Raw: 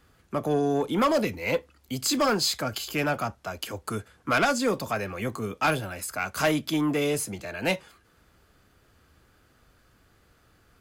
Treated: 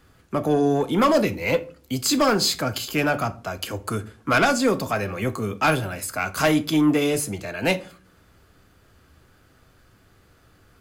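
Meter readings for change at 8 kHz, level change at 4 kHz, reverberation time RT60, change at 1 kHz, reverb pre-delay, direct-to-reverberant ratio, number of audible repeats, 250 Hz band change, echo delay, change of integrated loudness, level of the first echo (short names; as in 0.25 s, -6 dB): +3.5 dB, +3.5 dB, 0.45 s, +4.0 dB, 6 ms, 11.5 dB, none, +6.0 dB, none, +4.5 dB, none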